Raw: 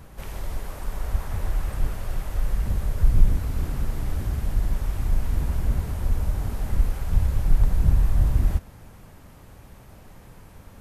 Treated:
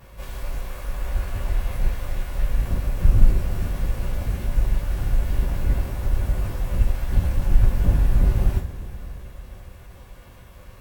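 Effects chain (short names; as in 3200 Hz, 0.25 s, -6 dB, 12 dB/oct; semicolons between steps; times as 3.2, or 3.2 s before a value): minimum comb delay 1.8 ms; two-slope reverb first 0.32 s, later 4.9 s, from -22 dB, DRR -5.5 dB; formant shift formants +4 st; gain -4 dB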